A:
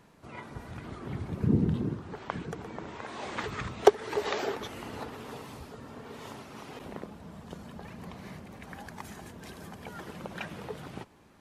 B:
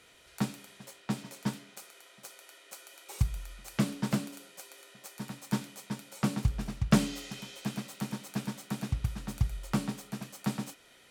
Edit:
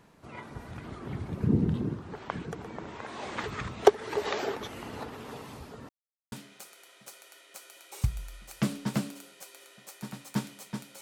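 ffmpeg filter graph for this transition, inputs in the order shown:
ffmpeg -i cue0.wav -i cue1.wav -filter_complex "[0:a]apad=whole_dur=11.01,atrim=end=11.01,asplit=2[link_01][link_02];[link_01]atrim=end=5.89,asetpts=PTS-STARTPTS,afade=type=out:start_time=5.886:duration=0.004:curve=hsin[link_03];[link_02]atrim=start=5.89:end=6.32,asetpts=PTS-STARTPTS,volume=0[link_04];[1:a]atrim=start=1.49:end=6.18,asetpts=PTS-STARTPTS,afade=type=in:duration=0.004:curve=hsin[link_05];[link_03][link_04][link_05]concat=n=3:v=0:a=1" out.wav

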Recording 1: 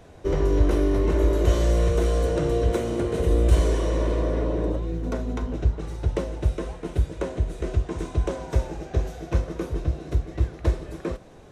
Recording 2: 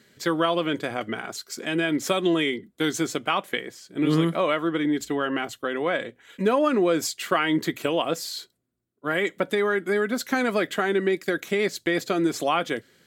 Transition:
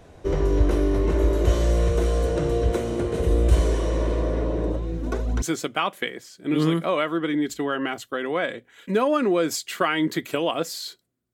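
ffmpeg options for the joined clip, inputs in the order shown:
ffmpeg -i cue0.wav -i cue1.wav -filter_complex "[0:a]asplit=3[link_01][link_02][link_03];[link_01]afade=type=out:start_time=4.97:duration=0.02[link_04];[link_02]aphaser=in_gain=1:out_gain=1:delay=3.8:decay=0.63:speed=1.1:type=triangular,afade=type=in:start_time=4.97:duration=0.02,afade=type=out:start_time=5.42:duration=0.02[link_05];[link_03]afade=type=in:start_time=5.42:duration=0.02[link_06];[link_04][link_05][link_06]amix=inputs=3:normalize=0,apad=whole_dur=11.33,atrim=end=11.33,atrim=end=5.422[link_07];[1:a]atrim=start=2.928:end=8.84[link_08];[link_07][link_08]acrossfade=duration=0.004:curve1=hsin:curve2=hsin" out.wav

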